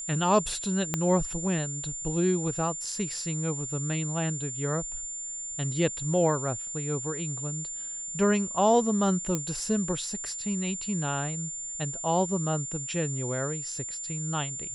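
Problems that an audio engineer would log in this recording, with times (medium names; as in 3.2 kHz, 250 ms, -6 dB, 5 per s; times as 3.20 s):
whine 7.2 kHz -34 dBFS
0.94 s: pop -11 dBFS
9.35 s: pop -14 dBFS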